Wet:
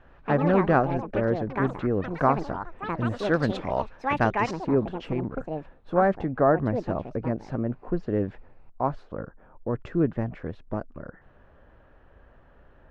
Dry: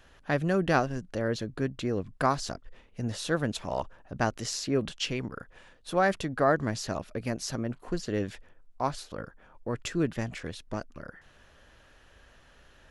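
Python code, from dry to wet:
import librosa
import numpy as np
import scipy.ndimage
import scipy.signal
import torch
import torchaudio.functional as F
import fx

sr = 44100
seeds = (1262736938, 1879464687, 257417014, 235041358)

y = fx.echo_pitch(x, sr, ms=83, semitones=7, count=3, db_per_echo=-6.0)
y = fx.lowpass(y, sr, hz=fx.steps((0.0, 1400.0), (3.19, 2500.0), (4.51, 1100.0)), slope=12)
y = F.gain(torch.from_numpy(y), 4.5).numpy()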